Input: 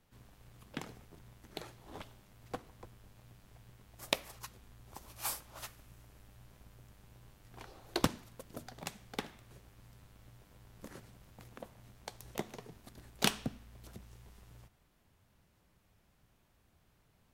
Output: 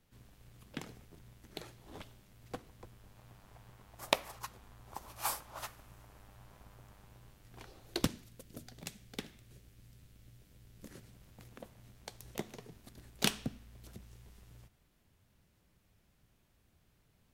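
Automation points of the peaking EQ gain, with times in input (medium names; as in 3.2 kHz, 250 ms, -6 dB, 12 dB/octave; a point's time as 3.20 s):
peaking EQ 940 Hz 1.6 oct
2.74 s -4 dB
3.37 s +7 dB
6.94 s +7 dB
7.33 s -0.5 dB
8.31 s -12 dB
10.74 s -12 dB
11.27 s -4.5 dB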